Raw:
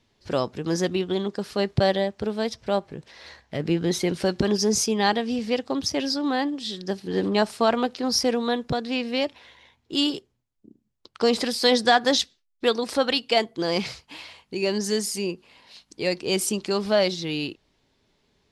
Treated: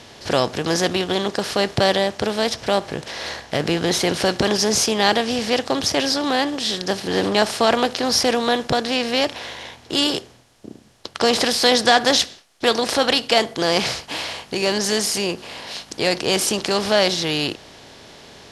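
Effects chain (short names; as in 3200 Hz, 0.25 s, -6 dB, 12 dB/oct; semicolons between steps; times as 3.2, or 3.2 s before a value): per-bin compression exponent 0.6; low shelf 430 Hz -5 dB; gain +2.5 dB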